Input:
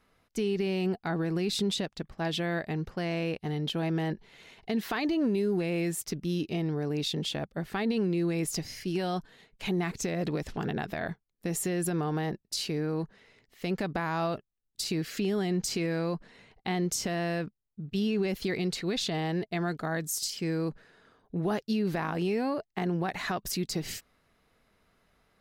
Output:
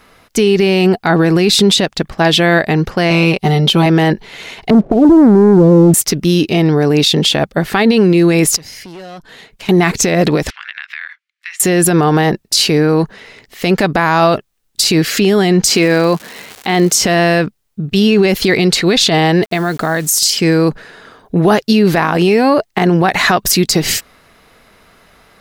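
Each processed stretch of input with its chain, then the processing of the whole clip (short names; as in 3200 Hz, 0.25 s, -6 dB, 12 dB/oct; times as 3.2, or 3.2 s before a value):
3.1–3.86 bell 1700 Hz -6 dB 0.42 oct + comb 5.2 ms, depth 66%
4.7–5.94 steep low-pass 680 Hz 72 dB/oct + low shelf 220 Hz +10.5 dB + sample leveller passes 1
8.56–9.69 tube stage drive 33 dB, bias 0.55 + compressor 3:1, threshold -55 dBFS
10.5–11.6 inverse Chebyshev high-pass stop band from 340 Hz, stop band 60 dB + compressor 4:1, threshold -42 dBFS + EQ curve 180 Hz 0 dB, 280 Hz -15 dB, 690 Hz -21 dB, 2100 Hz +1 dB, 8600 Hz -21 dB, 12000 Hz -30 dB
15.69–17 HPF 160 Hz + crackle 330/s -44 dBFS
19.43–20.18 compressor 5:1, threshold -32 dBFS + requantised 10-bit, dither none
whole clip: low shelf 340 Hz -5.5 dB; maximiser +24 dB; gain -1 dB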